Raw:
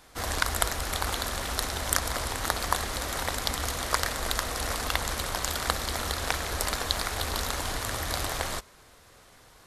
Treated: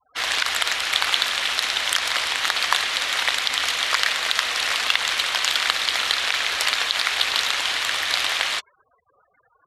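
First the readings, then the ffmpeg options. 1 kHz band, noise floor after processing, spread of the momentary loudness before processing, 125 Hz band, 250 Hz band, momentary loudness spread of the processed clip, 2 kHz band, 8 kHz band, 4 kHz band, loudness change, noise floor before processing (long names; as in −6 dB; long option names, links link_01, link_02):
+4.0 dB, −65 dBFS, 3 LU, below −15 dB, −8.0 dB, 2 LU, +11.5 dB, +3.0 dB, +13.0 dB, +9.0 dB, −55 dBFS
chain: -af "afftfilt=real='re*gte(hypot(re,im),0.00501)':imag='im*gte(hypot(re,im),0.00501)':win_size=1024:overlap=0.75,bandpass=frequency=2800:width_type=q:width=1.8:csg=0,alimiter=level_in=18.5dB:limit=-1dB:release=50:level=0:latency=1,volume=-1dB"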